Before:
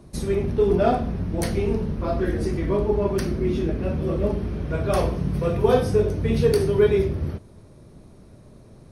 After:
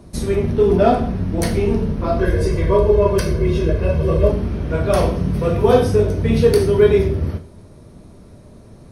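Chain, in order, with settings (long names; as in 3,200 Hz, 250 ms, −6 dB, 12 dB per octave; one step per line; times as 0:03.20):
0:02.19–0:04.30: comb filter 1.9 ms, depth 81%
reverb whose tail is shaped and stops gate 150 ms falling, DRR 7 dB
level +4.5 dB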